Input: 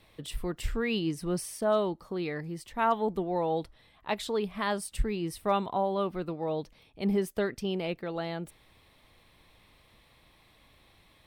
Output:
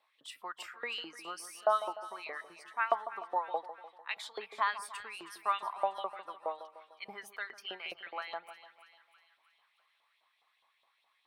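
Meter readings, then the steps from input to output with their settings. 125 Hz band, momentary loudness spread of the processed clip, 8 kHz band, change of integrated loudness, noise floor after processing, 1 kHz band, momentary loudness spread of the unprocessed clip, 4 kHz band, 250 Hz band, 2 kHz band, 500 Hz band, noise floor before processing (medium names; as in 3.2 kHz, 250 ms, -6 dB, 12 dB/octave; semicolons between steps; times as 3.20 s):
under -30 dB, 14 LU, -8.0 dB, -6.0 dB, -76 dBFS, -1.5 dB, 9 LU, -3.0 dB, -25.5 dB, 0.0 dB, -9.5 dB, -62 dBFS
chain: spectral noise reduction 10 dB; treble shelf 9.4 kHz -6 dB; LFO high-pass saw up 4.8 Hz 620–3500 Hz; peaking EQ 1.1 kHz +4.5 dB 0.8 oct; hum notches 50/100/150 Hz; two-band feedback delay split 1.3 kHz, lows 149 ms, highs 320 ms, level -12.5 dB; trim -5.5 dB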